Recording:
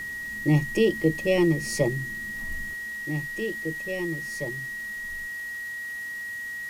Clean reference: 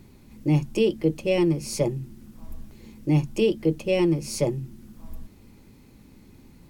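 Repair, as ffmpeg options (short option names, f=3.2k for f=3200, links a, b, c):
-af "adeclick=t=4,bandreject=f=1.9k:w=30,afwtdn=0.0035,asetnsamples=n=441:p=0,asendcmd='2.74 volume volume 10dB',volume=0dB"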